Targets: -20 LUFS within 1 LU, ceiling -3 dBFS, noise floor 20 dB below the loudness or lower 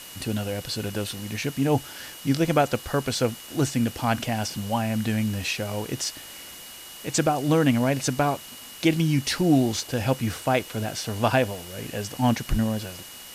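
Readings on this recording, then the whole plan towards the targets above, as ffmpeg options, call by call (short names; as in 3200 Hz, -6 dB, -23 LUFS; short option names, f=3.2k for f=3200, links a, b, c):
steady tone 2900 Hz; tone level -46 dBFS; noise floor -42 dBFS; noise floor target -46 dBFS; loudness -25.5 LUFS; peak -7.0 dBFS; loudness target -20.0 LUFS
-> -af "bandreject=f=2.9k:w=30"
-af "afftdn=nr=6:nf=-42"
-af "volume=5.5dB,alimiter=limit=-3dB:level=0:latency=1"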